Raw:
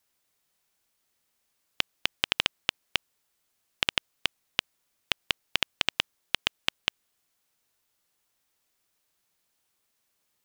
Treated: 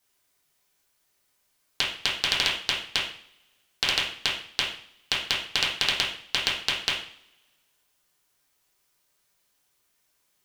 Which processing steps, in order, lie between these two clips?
two-slope reverb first 0.5 s, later 1.6 s, from -25 dB, DRR -3 dB; loudspeaker Doppler distortion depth 0.54 ms

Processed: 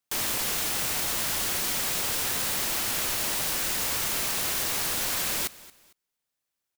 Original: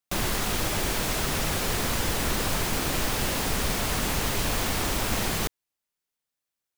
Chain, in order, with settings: integer overflow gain 25.5 dB; feedback delay 227 ms, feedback 31%, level -20 dB; trim +2 dB

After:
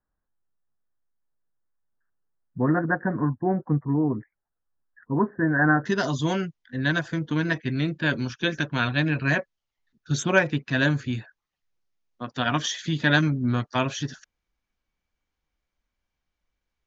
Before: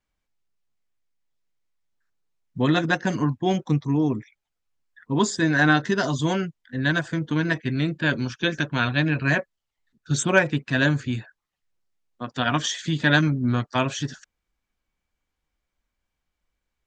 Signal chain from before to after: steep low-pass 1.8 kHz 72 dB/octave, from 5.85 s 6.9 kHz; trim -1.5 dB

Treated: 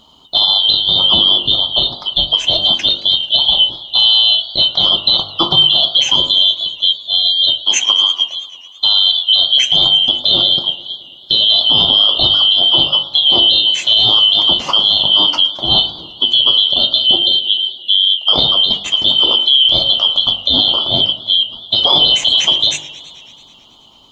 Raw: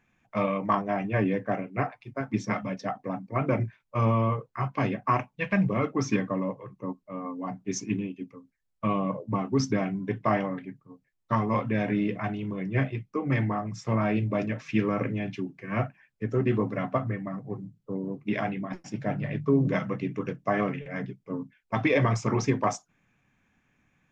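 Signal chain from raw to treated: four frequency bands reordered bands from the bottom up 2413; de-hum 49.85 Hz, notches 29; compression, threshold -28 dBFS, peak gain reduction 10.5 dB; loudness maximiser +23 dB; modulated delay 109 ms, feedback 76%, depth 159 cents, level -20 dB; trim -1 dB

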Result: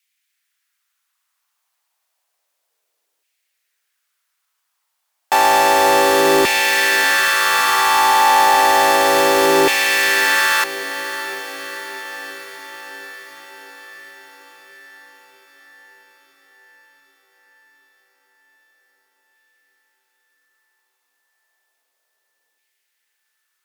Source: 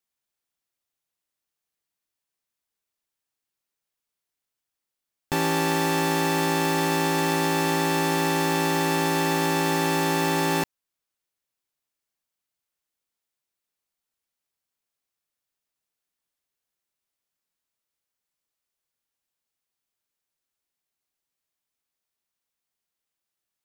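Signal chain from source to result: in parallel at +1 dB: peak limiter -20 dBFS, peak gain reduction 7.5 dB; on the sum: LFO high-pass saw down 0.31 Hz 410–2300 Hz; echo that smears into a reverb 664 ms, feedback 65%, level -13 dB; Chebyshev shaper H 4 -30 dB, 5 -22 dB, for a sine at -4.5 dBFS; trim +3 dB

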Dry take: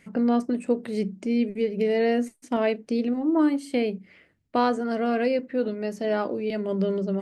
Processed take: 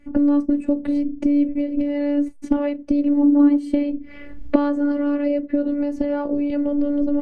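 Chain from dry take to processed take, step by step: recorder AGC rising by 51 dB/s; robot voice 288 Hz; tilt EQ -4 dB/octave

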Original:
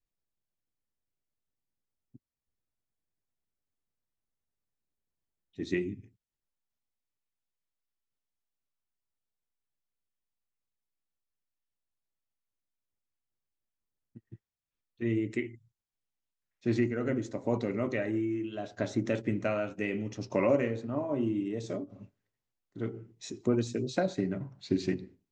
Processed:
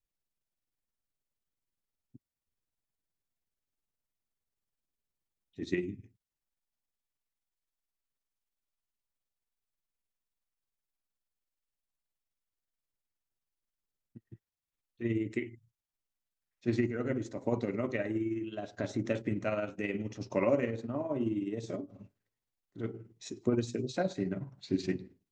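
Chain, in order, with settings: tremolo 19 Hz, depth 48%

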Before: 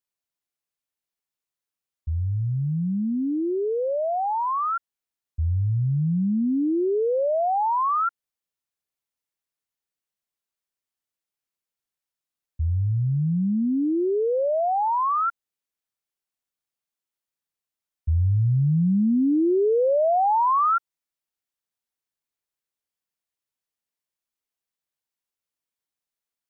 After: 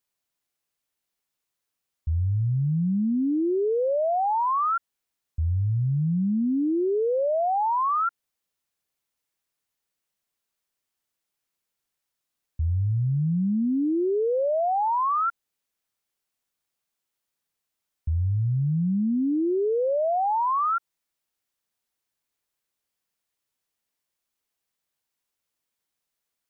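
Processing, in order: peak limiter -26.5 dBFS, peak gain reduction 9.5 dB; trim +6 dB

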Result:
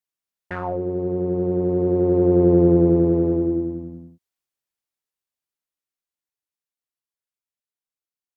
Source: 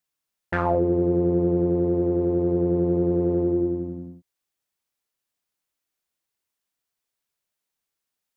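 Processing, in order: Doppler pass-by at 2.57 s, 12 m/s, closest 5.8 m; trim +7.5 dB

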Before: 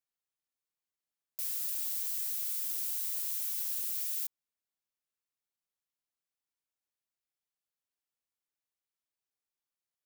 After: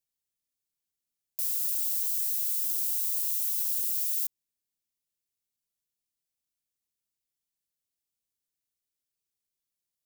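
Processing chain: peaking EQ 1.1 kHz -15 dB 2.4 oct; trim +6 dB

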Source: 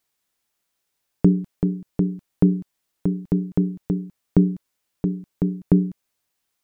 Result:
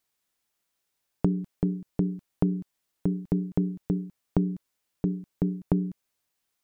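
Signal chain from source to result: compression 5:1, threshold -17 dBFS, peak gain reduction 7 dB; trim -3 dB

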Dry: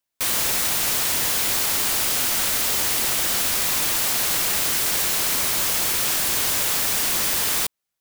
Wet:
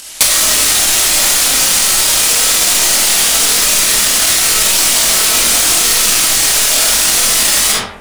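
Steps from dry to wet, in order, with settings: low-pass 11 kHz 24 dB/octave; treble shelf 2.4 kHz +12 dB; upward compressor, threshold -34 dBFS; hard clipper -21.5 dBFS, distortion -6 dB; chorus voices 4, 0.25 Hz, delay 23 ms, depth 2.7 ms; algorithmic reverb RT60 0.79 s, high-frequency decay 0.5×, pre-delay 5 ms, DRR -4 dB; loudness maximiser +23 dB; trim -1 dB

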